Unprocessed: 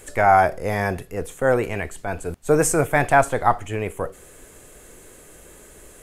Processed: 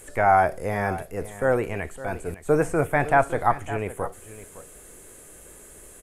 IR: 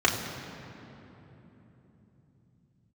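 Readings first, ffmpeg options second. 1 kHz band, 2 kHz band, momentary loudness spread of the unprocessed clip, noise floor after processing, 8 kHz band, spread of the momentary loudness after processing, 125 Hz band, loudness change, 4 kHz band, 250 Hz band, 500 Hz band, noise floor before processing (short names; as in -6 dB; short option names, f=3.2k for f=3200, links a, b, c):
-3.0 dB, -3.5 dB, 13 LU, -47 dBFS, -11.5 dB, 19 LU, -3.0 dB, -3.0 dB, n/a, -3.0 dB, -3.0 dB, -47 dBFS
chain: -filter_complex "[0:a]acrossover=split=2800[a][b];[b]acompressor=threshold=-48dB:ratio=4:attack=1:release=60[c];[a][c]amix=inputs=2:normalize=0,equalizer=f=10k:t=o:w=1:g=9,asplit=2[d][e];[e]aecho=0:1:560:0.178[f];[d][f]amix=inputs=2:normalize=0,volume=-3dB"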